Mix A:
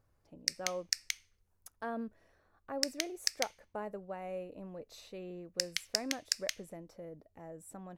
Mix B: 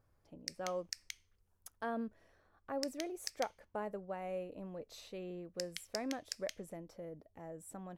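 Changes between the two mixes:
background -10.5 dB; master: remove band-stop 3.2 kHz, Q 17

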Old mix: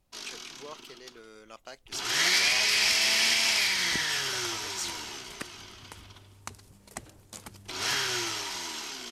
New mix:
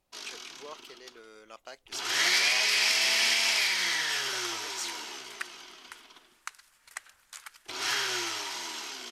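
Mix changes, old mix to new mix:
second sound: add resonant high-pass 1.5 kHz, resonance Q 2.1; master: add tone controls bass -10 dB, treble -2 dB

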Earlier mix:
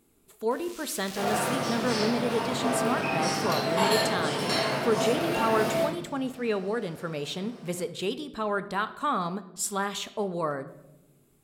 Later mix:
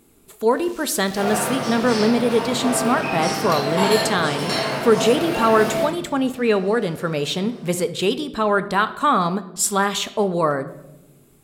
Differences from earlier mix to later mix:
speech +10.0 dB; second sound +4.0 dB

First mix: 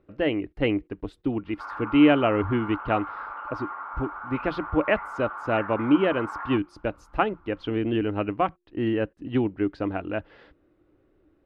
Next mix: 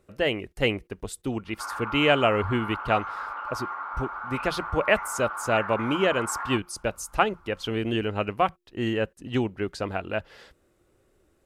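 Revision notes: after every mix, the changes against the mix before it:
speech: add peaking EQ 300 Hz -12.5 dB 0.24 oct; master: remove distance through air 340 m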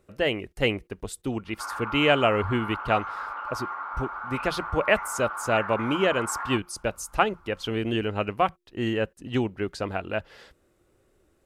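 no change

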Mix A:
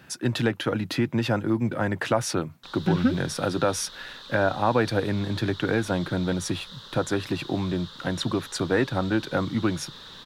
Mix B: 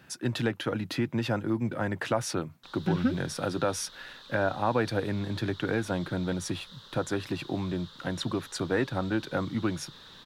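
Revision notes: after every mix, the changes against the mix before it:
speech -4.5 dB; background -6.5 dB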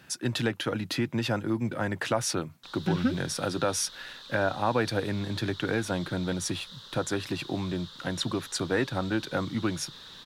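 master: add peaking EQ 7.9 kHz +5.5 dB 2.9 oct

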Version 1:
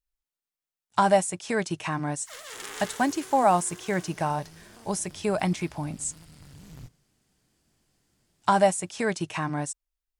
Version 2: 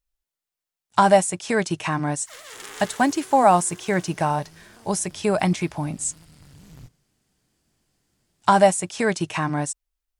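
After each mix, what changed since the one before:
speech +5.0 dB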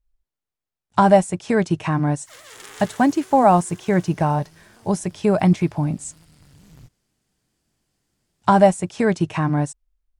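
speech: add tilt EQ -2.5 dB/octave; reverb: off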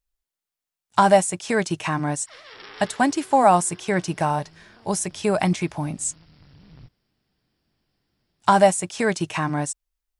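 speech: add tilt EQ +2.5 dB/octave; background: add brick-wall FIR low-pass 5.7 kHz

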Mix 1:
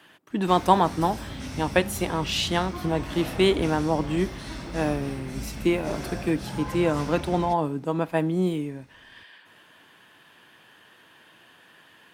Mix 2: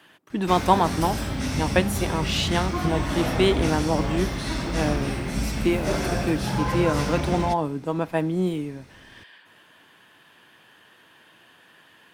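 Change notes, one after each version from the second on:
background +8.5 dB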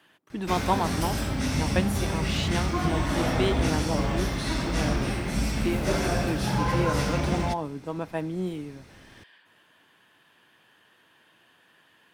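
speech -6.5 dB

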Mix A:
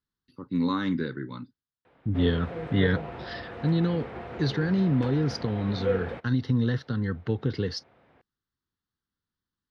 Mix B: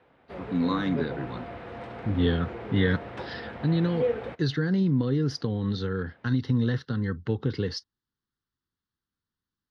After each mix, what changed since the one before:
background: entry -1.85 s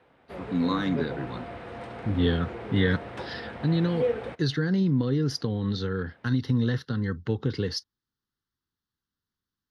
master: remove distance through air 74 m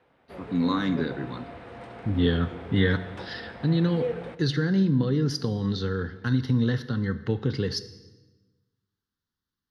background -4.0 dB; reverb: on, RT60 1.2 s

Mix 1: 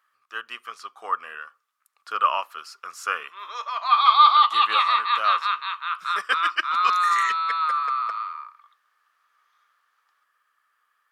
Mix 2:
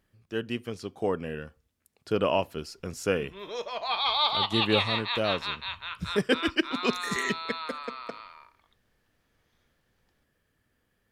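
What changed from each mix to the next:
master: remove resonant high-pass 1.2 kHz, resonance Q 9.5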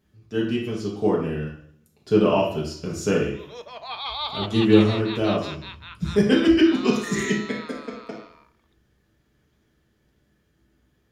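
background -4.5 dB; reverb: on, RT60 0.60 s

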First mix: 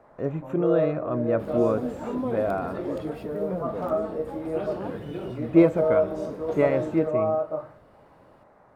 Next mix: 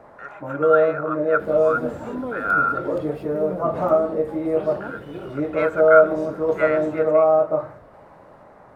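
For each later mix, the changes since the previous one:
speech: add resonant high-pass 1.4 kHz, resonance Q 14; first sound +8.5 dB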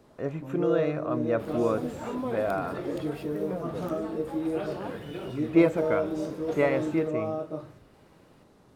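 speech: remove resonant high-pass 1.4 kHz, resonance Q 14; first sound: add high-order bell 1.1 kHz -15.5 dB 2.4 oct; master: add tilt shelf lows -4.5 dB, about 1.1 kHz

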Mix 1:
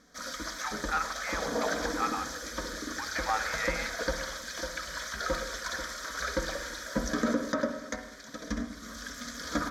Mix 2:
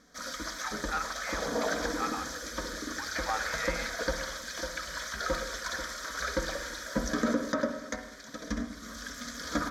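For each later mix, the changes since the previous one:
speech -3.0 dB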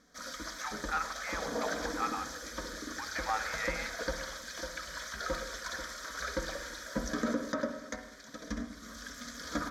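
background -4.0 dB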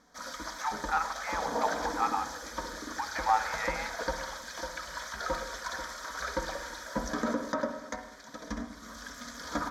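master: add peaking EQ 880 Hz +13.5 dB 0.5 oct

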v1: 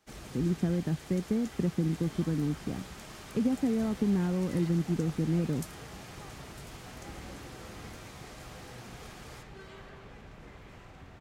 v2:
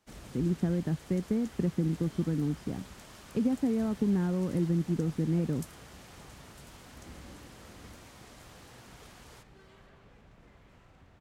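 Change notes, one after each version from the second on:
second sound -7.0 dB; reverb: off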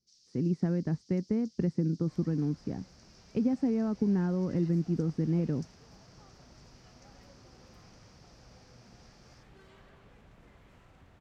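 first sound: add Butterworth band-pass 5.2 kHz, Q 3.3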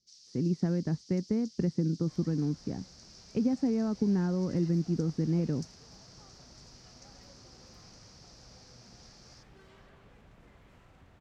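first sound +7.5 dB

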